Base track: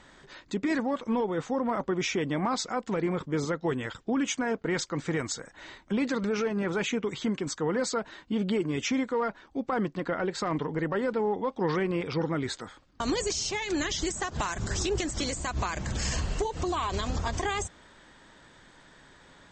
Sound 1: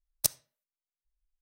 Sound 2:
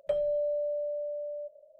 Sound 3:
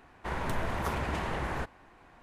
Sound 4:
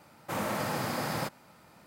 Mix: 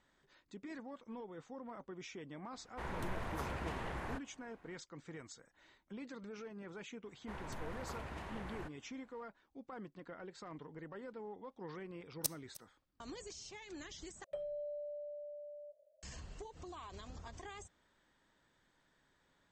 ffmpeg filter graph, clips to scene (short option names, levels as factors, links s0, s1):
-filter_complex "[3:a]asplit=2[s0][s1];[0:a]volume=0.1[s2];[1:a]aecho=1:1:306:0.126[s3];[s2]asplit=2[s4][s5];[s4]atrim=end=14.244[s6];[2:a]atrim=end=1.79,asetpts=PTS-STARTPTS,volume=0.211[s7];[s5]atrim=start=16.026[s8];[s0]atrim=end=2.22,asetpts=PTS-STARTPTS,volume=0.355,afade=t=in:d=0.004:c=hsin,afade=t=out:st=2.216:d=0.004:c=hsin,adelay=2530[s9];[s1]atrim=end=2.22,asetpts=PTS-STARTPTS,volume=0.211,afade=t=in:d=0.004:c=hsin,afade=t=out:st=2.216:d=0.004:c=hsin,adelay=7030[s10];[s3]atrim=end=1.41,asetpts=PTS-STARTPTS,volume=0.316,afade=t=in:d=0.004:c=hsin,afade=t=out:st=1.406:d=0.004:c=hsin,adelay=12000[s11];[s6][s7]acrossfade=d=0.004:c1=hsin:c2=hsin[s12];[s12][s8]acrossfade=d=0.004:c1=hsin:c2=hsin[s13];[s13][s9][s10][s11]amix=inputs=4:normalize=0"